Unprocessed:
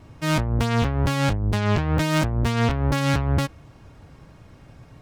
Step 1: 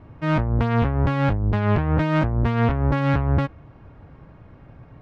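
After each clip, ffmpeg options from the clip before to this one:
-af "lowpass=1.9k,volume=1.5dB"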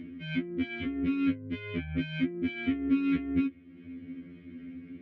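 -filter_complex "[0:a]acompressor=mode=upward:threshold=-29dB:ratio=2.5,asplit=3[a][b][c];[a]bandpass=f=270:t=q:w=8,volume=0dB[d];[b]bandpass=f=2.29k:t=q:w=8,volume=-6dB[e];[c]bandpass=f=3.01k:t=q:w=8,volume=-9dB[f];[d][e][f]amix=inputs=3:normalize=0,afftfilt=real='re*2*eq(mod(b,4),0)':imag='im*2*eq(mod(b,4),0)':win_size=2048:overlap=0.75,volume=9dB"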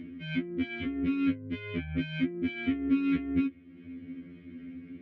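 -af anull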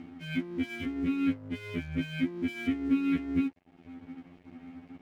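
-af "aeval=exprs='sgn(val(0))*max(abs(val(0))-0.00266,0)':c=same"

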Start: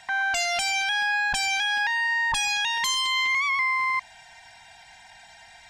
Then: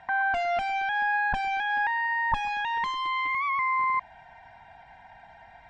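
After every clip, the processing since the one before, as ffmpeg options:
-af "lowpass=1.2k,volume=4dB"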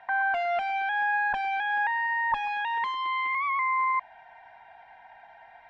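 -filter_complex "[0:a]acrossover=split=350 3900:gain=0.178 1 0.2[a][b][c];[a][b][c]amix=inputs=3:normalize=0"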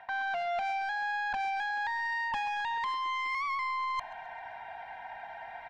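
-af "areverse,acompressor=threshold=-35dB:ratio=16,areverse,asoftclip=type=tanh:threshold=-35dB,aecho=1:1:132|264|396|528:0.1|0.051|0.026|0.0133,volume=7.5dB"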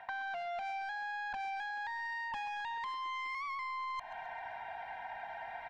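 -af "acompressor=threshold=-38dB:ratio=6"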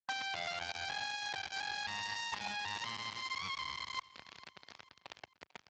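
-af "acrusher=bits=5:mix=0:aa=0.000001,aecho=1:1:446|892|1338:0.1|0.046|0.0212,volume=1dB" -ar 16000 -c:a libspeex -b:a 21k

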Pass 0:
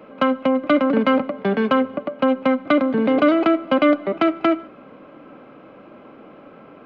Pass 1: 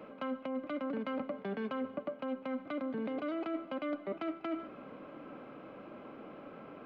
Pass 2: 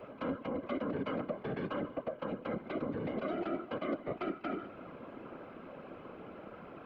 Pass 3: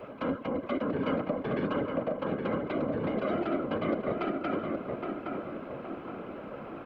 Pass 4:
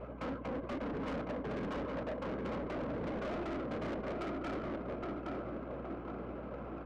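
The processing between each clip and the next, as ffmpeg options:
-af "alimiter=limit=-14dB:level=0:latency=1:release=234,areverse,acompressor=threshold=-29dB:ratio=6,areverse,volume=-5.5dB"
-af "afftfilt=real='hypot(re,im)*cos(2*PI*random(0))':imag='hypot(re,im)*sin(2*PI*random(1))':win_size=512:overlap=0.75,volume=6.5dB"
-filter_complex "[0:a]asplit=2[a][b];[b]adelay=817,lowpass=f=2k:p=1,volume=-3.5dB,asplit=2[c][d];[d]adelay=817,lowpass=f=2k:p=1,volume=0.46,asplit=2[e][f];[f]adelay=817,lowpass=f=2k:p=1,volume=0.46,asplit=2[g][h];[h]adelay=817,lowpass=f=2k:p=1,volume=0.46,asplit=2[i][j];[j]adelay=817,lowpass=f=2k:p=1,volume=0.46,asplit=2[k][l];[l]adelay=817,lowpass=f=2k:p=1,volume=0.46[m];[a][c][e][g][i][k][m]amix=inputs=7:normalize=0,volume=5dB"
-af "asoftclip=type=hard:threshold=-33.5dB,adynamicsmooth=sensitivity=6.5:basefreq=1.9k,aeval=exprs='val(0)+0.00447*(sin(2*PI*60*n/s)+sin(2*PI*2*60*n/s)/2+sin(2*PI*3*60*n/s)/3+sin(2*PI*4*60*n/s)/4+sin(2*PI*5*60*n/s)/5)':c=same,volume=-2.5dB"

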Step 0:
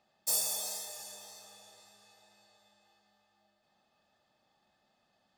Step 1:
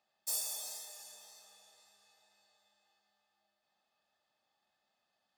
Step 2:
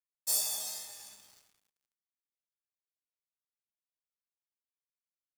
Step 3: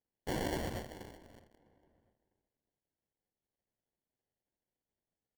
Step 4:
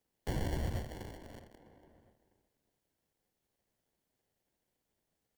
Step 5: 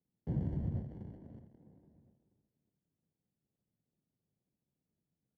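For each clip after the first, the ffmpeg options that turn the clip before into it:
-af "lowshelf=f=430:g=-11.5,volume=-5.5dB"
-filter_complex "[0:a]asplit=2[a][b];[b]adelay=16,volume=-2.5dB[c];[a][c]amix=inputs=2:normalize=0,asubboost=boost=10:cutoff=230,aeval=exprs='sgn(val(0))*max(abs(val(0))-0.00178,0)':c=same,volume=4.5dB"
-filter_complex "[0:a]alimiter=level_in=2dB:limit=-24dB:level=0:latency=1,volume=-2dB,acrusher=samples=35:mix=1:aa=0.000001,asplit=2[a][b];[b]adelay=653,lowpass=f=2k:p=1,volume=-24dB,asplit=2[c][d];[d]adelay=653,lowpass=f=2k:p=1,volume=0.3[e];[a][c][e]amix=inputs=3:normalize=0,volume=1dB"
-filter_complex "[0:a]acrossover=split=140[a][b];[b]acompressor=threshold=-57dB:ratio=2[c];[a][c]amix=inputs=2:normalize=0,volume=8.5dB"
-filter_complex "[0:a]asplit=2[a][b];[b]acrusher=samples=42:mix=1:aa=0.000001:lfo=1:lforange=67.2:lforate=2.2,volume=-11dB[c];[a][c]amix=inputs=2:normalize=0,bandpass=f=160:t=q:w=1.6:csg=0,volume=4dB"

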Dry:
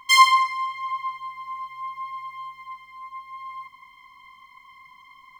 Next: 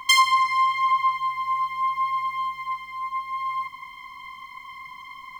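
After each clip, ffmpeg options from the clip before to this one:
-filter_complex "[0:a]acrossover=split=330[a][b];[b]acompressor=threshold=-25dB:ratio=6[c];[a][c]amix=inputs=2:normalize=0,volume=9dB"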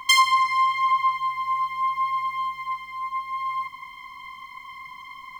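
-af anull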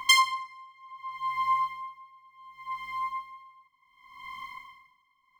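-af "aeval=exprs='val(0)*pow(10,-30*(0.5-0.5*cos(2*PI*0.68*n/s))/20)':c=same"

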